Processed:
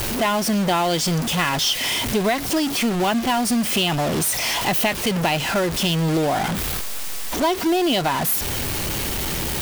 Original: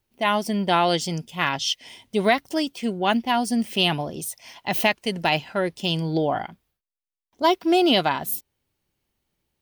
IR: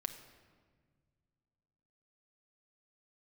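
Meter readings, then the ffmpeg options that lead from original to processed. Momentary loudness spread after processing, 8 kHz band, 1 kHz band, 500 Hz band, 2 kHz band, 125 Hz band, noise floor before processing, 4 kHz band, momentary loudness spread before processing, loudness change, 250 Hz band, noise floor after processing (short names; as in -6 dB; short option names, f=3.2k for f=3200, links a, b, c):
4 LU, +11.5 dB, +1.0 dB, +1.5 dB, +2.5 dB, +6.0 dB, under -85 dBFS, +3.5 dB, 10 LU, +2.5 dB, +3.0 dB, -26 dBFS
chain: -af "aeval=exprs='val(0)+0.5*0.1*sgn(val(0))':c=same,acrusher=bits=4:mode=log:mix=0:aa=0.000001,acompressor=threshold=-21dB:ratio=3,volume=2.5dB"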